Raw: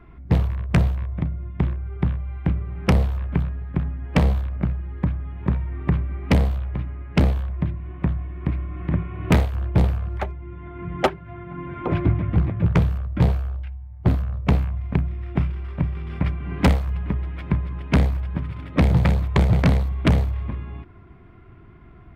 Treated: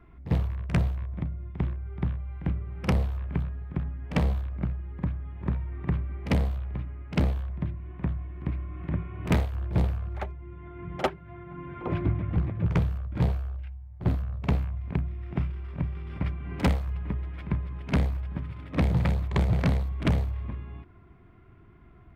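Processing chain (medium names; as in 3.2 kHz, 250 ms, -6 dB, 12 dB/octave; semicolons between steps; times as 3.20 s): pre-echo 48 ms -14 dB; trim -7 dB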